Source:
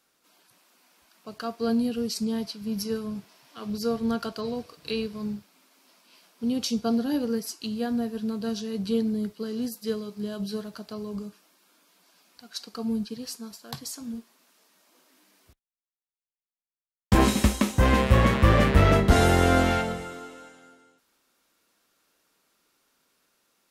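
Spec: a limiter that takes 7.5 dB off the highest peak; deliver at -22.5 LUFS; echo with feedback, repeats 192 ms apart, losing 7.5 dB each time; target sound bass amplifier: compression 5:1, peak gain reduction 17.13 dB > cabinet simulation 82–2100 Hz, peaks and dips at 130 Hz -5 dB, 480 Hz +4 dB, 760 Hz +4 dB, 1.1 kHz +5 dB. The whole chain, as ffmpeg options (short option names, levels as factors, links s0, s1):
-af "alimiter=limit=0.224:level=0:latency=1,aecho=1:1:192|384|576|768|960:0.422|0.177|0.0744|0.0312|0.0131,acompressor=threshold=0.0158:ratio=5,highpass=f=82:w=0.5412,highpass=f=82:w=1.3066,equalizer=f=130:t=q:w=4:g=-5,equalizer=f=480:t=q:w=4:g=4,equalizer=f=760:t=q:w=4:g=4,equalizer=f=1100:t=q:w=4:g=5,lowpass=f=2100:w=0.5412,lowpass=f=2100:w=1.3066,volume=6.68"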